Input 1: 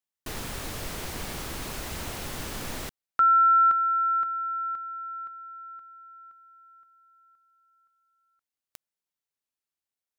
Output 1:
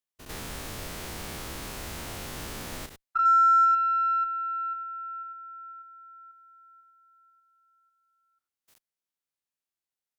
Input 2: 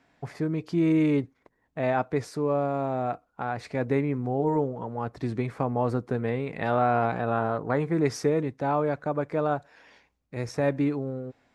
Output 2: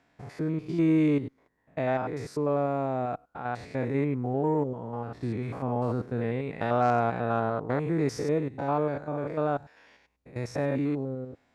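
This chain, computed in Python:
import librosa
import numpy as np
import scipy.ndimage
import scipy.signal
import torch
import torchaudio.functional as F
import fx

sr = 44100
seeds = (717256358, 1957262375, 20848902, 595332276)

y = fx.spec_steps(x, sr, hold_ms=100)
y = fx.cheby_harmonics(y, sr, harmonics=(3, 5, 7, 8), levels_db=(-26, -27, -33, -42), full_scale_db=-11.5)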